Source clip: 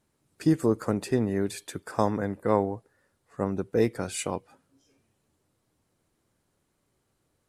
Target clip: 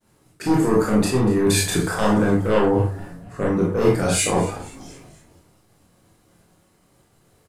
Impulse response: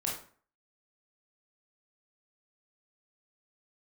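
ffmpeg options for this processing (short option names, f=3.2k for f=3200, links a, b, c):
-filter_complex "[0:a]asplit=2[a][b];[b]aeval=exprs='0.422*sin(PI/2*3.98*val(0)/0.422)':c=same,volume=-9dB[c];[a][c]amix=inputs=2:normalize=0,bandreject=f=48.78:t=h:w=4,bandreject=f=97.56:t=h:w=4,bandreject=f=146.34:t=h:w=4,areverse,acompressor=threshold=-27dB:ratio=10,areverse,agate=range=-33dB:threshold=-57dB:ratio=3:detection=peak,asplit=5[d][e][f][g][h];[e]adelay=239,afreqshift=-110,volume=-18.5dB[i];[f]adelay=478,afreqshift=-220,volume=-24dB[j];[g]adelay=717,afreqshift=-330,volume=-29.5dB[k];[h]adelay=956,afreqshift=-440,volume=-35dB[l];[d][i][j][k][l]amix=inputs=5:normalize=0[m];[1:a]atrim=start_sample=2205,atrim=end_sample=6615[n];[m][n]afir=irnorm=-1:irlink=0,volume=8dB"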